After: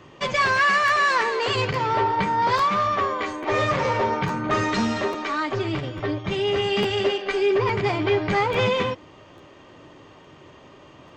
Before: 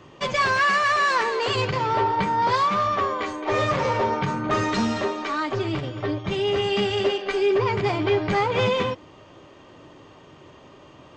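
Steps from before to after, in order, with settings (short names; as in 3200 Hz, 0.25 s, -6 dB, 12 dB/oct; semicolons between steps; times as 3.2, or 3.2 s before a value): bell 2000 Hz +2.5 dB 0.77 oct; crackling interface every 0.85 s, samples 512, repeat, from 0.87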